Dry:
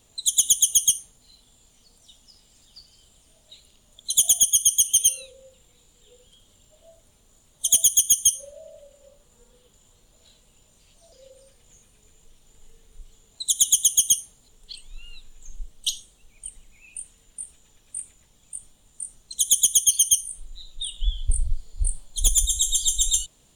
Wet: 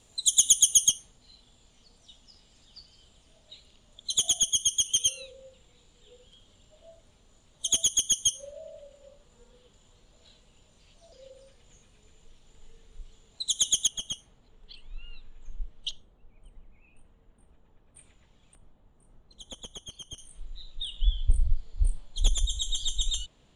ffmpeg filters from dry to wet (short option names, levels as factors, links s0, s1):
-af "asetnsamples=n=441:p=0,asendcmd='0.89 lowpass f 5100;13.87 lowpass f 2300;15.91 lowpass f 1200;17.96 lowpass f 3000;18.55 lowpass f 1300;20.18 lowpass f 3400',lowpass=9400"